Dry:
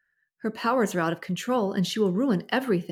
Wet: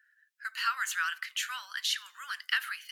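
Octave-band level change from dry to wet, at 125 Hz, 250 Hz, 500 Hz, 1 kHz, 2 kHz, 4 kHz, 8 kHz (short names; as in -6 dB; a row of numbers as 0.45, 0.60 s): under -40 dB, under -40 dB, under -40 dB, -7.5 dB, +2.0 dB, +2.5 dB, +2.5 dB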